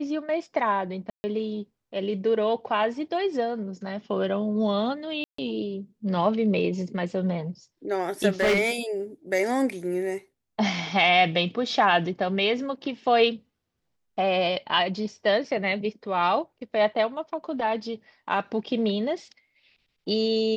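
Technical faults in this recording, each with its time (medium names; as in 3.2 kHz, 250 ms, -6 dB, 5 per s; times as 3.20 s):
1.10–1.24 s: dropout 140 ms
5.24–5.38 s: dropout 144 ms
8.40–8.71 s: clipped -17.5 dBFS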